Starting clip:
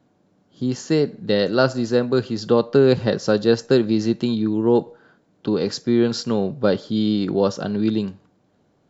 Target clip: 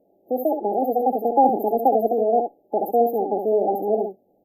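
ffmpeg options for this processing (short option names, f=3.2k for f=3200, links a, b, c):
-filter_complex "[0:a]asplit=2[a][b];[b]aecho=0:1:136:0.473[c];[a][c]amix=inputs=2:normalize=0,afftfilt=real='re*(1-between(b*sr/4096,420,6100))':imag='im*(1-between(b*sr/4096,420,6100))':win_size=4096:overlap=0.75,asetrate=88200,aresample=44100"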